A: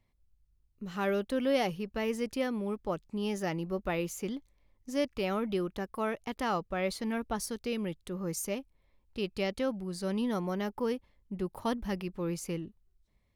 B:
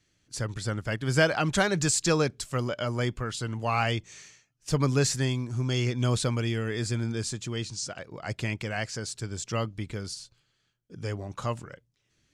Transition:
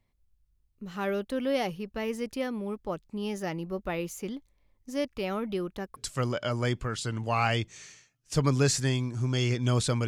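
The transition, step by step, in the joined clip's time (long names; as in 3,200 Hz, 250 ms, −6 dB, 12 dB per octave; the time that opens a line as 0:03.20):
A
0:05.96: continue with B from 0:02.32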